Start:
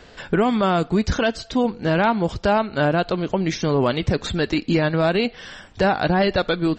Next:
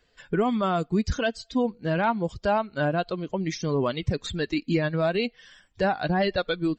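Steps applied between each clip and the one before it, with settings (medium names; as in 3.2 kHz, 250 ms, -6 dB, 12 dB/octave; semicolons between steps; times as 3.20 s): expander on every frequency bin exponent 1.5; trim -3 dB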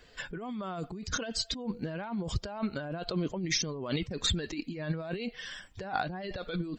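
compressor with a negative ratio -35 dBFS, ratio -1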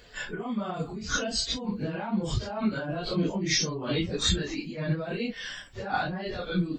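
phase randomisation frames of 100 ms; trim +4.5 dB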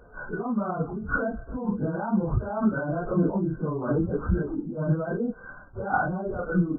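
brick-wall FIR low-pass 1.6 kHz; trim +4 dB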